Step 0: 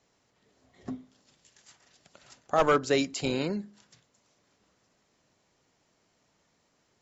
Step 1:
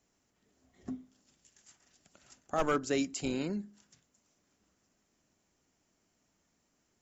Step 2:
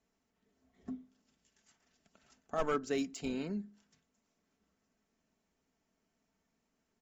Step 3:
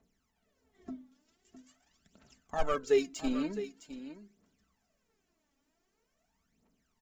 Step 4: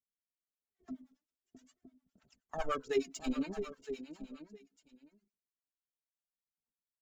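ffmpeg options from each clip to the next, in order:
-af "equalizer=f=125:t=o:w=1:g=-8,equalizer=f=500:t=o:w=1:g=-8,equalizer=f=1k:t=o:w=1:g=-7,equalizer=f=2k:t=o:w=1:g=-5,equalizer=f=4k:t=o:w=1:g=-9,volume=1dB"
-af "aecho=1:1:4.5:0.43,adynamicsmooth=sensitivity=5:basefreq=5.8k,volume=-4.5dB"
-af "aphaser=in_gain=1:out_gain=1:delay=3.7:decay=0.73:speed=0.45:type=triangular,aecho=1:1:660:0.237"
-filter_complex "[0:a]agate=range=-33dB:threshold=-56dB:ratio=3:detection=peak,aecho=1:1:964:0.2,acrossover=split=650[a][b];[a]aeval=exprs='val(0)*(1-1/2+1/2*cos(2*PI*9.7*n/s))':c=same[c];[b]aeval=exprs='val(0)*(1-1/2-1/2*cos(2*PI*9.7*n/s))':c=same[d];[c][d]amix=inputs=2:normalize=0,volume=1dB"

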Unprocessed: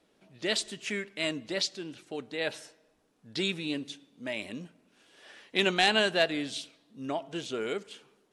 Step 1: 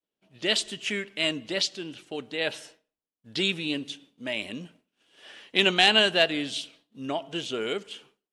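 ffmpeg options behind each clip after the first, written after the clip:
-af "equalizer=f=3k:w=3.6:g=7,agate=range=-33dB:threshold=-52dB:ratio=3:detection=peak,volume=2.5dB"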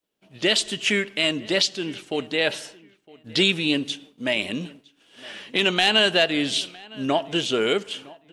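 -filter_complex "[0:a]asplit=2[a][b];[b]acontrast=83,volume=-3dB[c];[a][c]amix=inputs=2:normalize=0,alimiter=limit=-8.5dB:level=0:latency=1:release=258,asplit=2[d][e];[e]adelay=960,lowpass=f=3.3k:p=1,volume=-22dB,asplit=2[f][g];[g]adelay=960,lowpass=f=3.3k:p=1,volume=0.24[h];[d][f][h]amix=inputs=3:normalize=0"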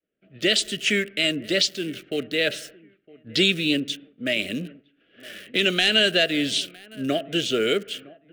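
-filter_complex "[0:a]acrossover=split=280|1100|2600[a][b][c][d];[d]aeval=exprs='val(0)*gte(abs(val(0)),0.00841)':c=same[e];[a][b][c][e]amix=inputs=4:normalize=0,asuperstop=centerf=930:order=4:qfactor=1.4"

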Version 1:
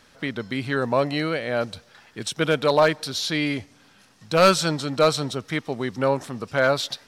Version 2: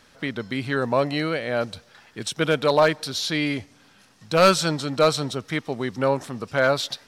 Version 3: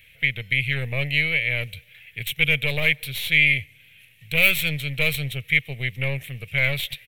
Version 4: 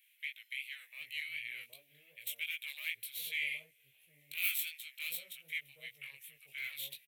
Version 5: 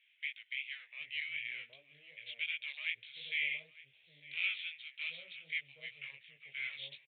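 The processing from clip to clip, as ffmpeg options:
-af anull
-af "equalizer=f=960:w=1.8:g=-11.5,aeval=exprs='0.531*(cos(1*acos(clip(val(0)/0.531,-1,1)))-cos(1*PI/2))+0.0841*(cos(3*acos(clip(val(0)/0.531,-1,1)))-cos(3*PI/2))+0.0596*(cos(5*acos(clip(val(0)/0.531,-1,1)))-cos(5*PI/2))+0.0473*(cos(8*acos(clip(val(0)/0.531,-1,1)))-cos(8*PI/2))':c=same,firequalizer=gain_entry='entry(140,0);entry(200,-18);entry(320,-22);entry(470,-11);entry(860,-17);entry(1400,-16);entry(2200,12);entry(3200,3);entry(4900,-21);entry(13000,10)':delay=0.05:min_phase=1,volume=2.5dB"
-filter_complex "[0:a]aderivative,acrossover=split=810[a][b];[a]adelay=770[c];[c][b]amix=inputs=2:normalize=0,flanger=delay=17:depth=5:speed=2.7,volume=-6.5dB"
-af "aecho=1:1:906:0.106,aresample=8000,aresample=44100,volume=1.5dB"

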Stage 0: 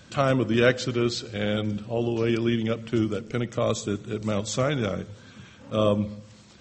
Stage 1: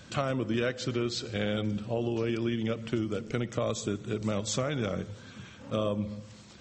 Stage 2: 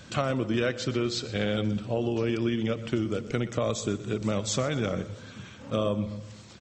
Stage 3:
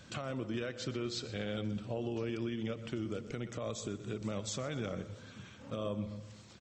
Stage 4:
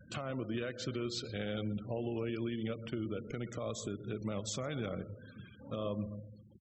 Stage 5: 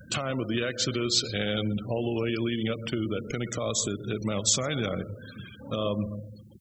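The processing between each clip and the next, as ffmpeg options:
-af "acompressor=threshold=-26dB:ratio=6"
-af "aecho=1:1:123|246|369|492:0.126|0.0579|0.0266|0.0123,volume=2.5dB"
-af "alimiter=limit=-20.5dB:level=0:latency=1:release=181,volume=-7dB"
-af "afftfilt=real='re*gte(hypot(re,im),0.00398)':imag='im*gte(hypot(re,im),0.00398)':win_size=1024:overlap=0.75"
-af "highshelf=f=2.9k:g=11.5,volume=8dB"

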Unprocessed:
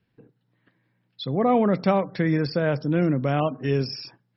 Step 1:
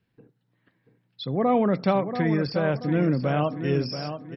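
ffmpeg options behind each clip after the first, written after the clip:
-filter_complex "[0:a]asplit=2[a][b];[b]adelay=683,lowpass=f=4.6k:p=1,volume=-9dB,asplit=2[c][d];[d]adelay=683,lowpass=f=4.6k:p=1,volume=0.38,asplit=2[e][f];[f]adelay=683,lowpass=f=4.6k:p=1,volume=0.38,asplit=2[g][h];[h]adelay=683,lowpass=f=4.6k:p=1,volume=0.38[i];[a][c][e][g][i]amix=inputs=5:normalize=0,volume=-1.5dB"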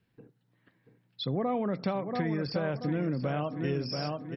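-af "acompressor=threshold=-27dB:ratio=6"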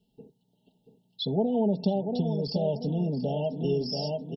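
-af "afftfilt=real='re*(1-between(b*sr/4096,940,2700))':imag='im*(1-between(b*sr/4096,940,2700))':win_size=4096:overlap=0.75,aecho=1:1:4.7:0.83,volume=1.5dB"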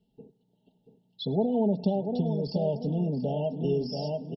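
-af "highshelf=f=3.6k:g=-9.5,aecho=1:1:105|210|315|420:0.0668|0.0368|0.0202|0.0111"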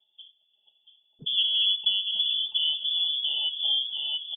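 -af "acontrast=63,lowpass=f=3.1k:t=q:w=0.5098,lowpass=f=3.1k:t=q:w=0.6013,lowpass=f=3.1k:t=q:w=0.9,lowpass=f=3.1k:t=q:w=2.563,afreqshift=-3600,volume=-5.5dB"

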